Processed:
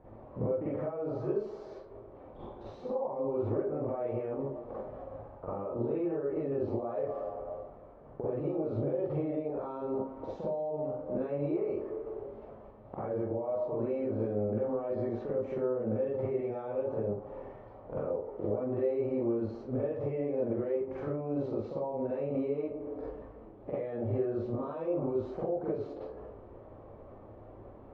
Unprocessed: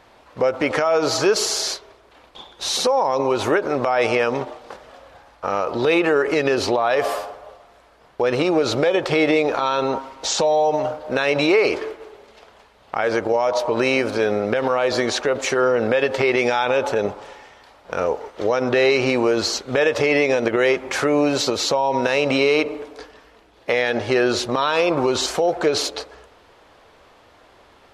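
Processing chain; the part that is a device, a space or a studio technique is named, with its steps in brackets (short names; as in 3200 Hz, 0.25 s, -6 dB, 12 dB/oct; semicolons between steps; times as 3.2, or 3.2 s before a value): television next door (compressor 6:1, threshold -34 dBFS, peak gain reduction 19.5 dB; LPF 480 Hz 12 dB/oct; reverb RT60 0.35 s, pre-delay 39 ms, DRR -8.5 dB); gain -2 dB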